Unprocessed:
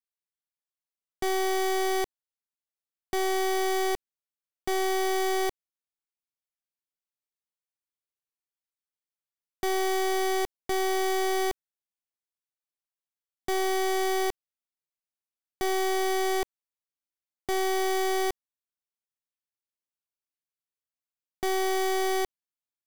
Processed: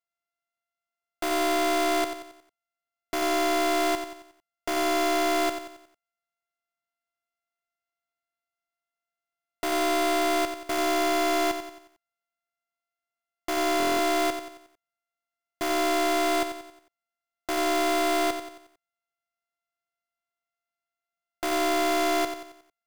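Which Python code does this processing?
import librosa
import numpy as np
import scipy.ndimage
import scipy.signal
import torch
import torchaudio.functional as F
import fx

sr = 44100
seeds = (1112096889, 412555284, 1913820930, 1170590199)

y = np.r_[np.sort(x[:len(x) // 64 * 64].reshape(-1, 64), axis=1).ravel(), x[len(x) // 64 * 64:]]
y = fx.low_shelf(y, sr, hz=76.0, db=-8.5)
y = fx.echo_feedback(y, sr, ms=90, feedback_pct=45, wet_db=-9)
y = fx.buffer_glitch(y, sr, at_s=(13.78,), block=1024, repeats=8)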